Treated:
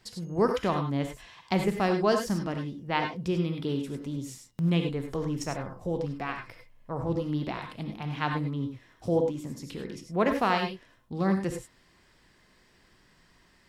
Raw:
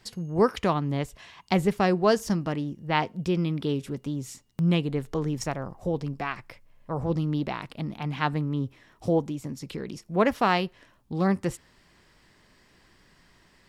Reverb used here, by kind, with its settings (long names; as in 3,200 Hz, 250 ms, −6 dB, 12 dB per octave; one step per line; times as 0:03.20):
reverb whose tail is shaped and stops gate 120 ms rising, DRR 4.5 dB
level −3.5 dB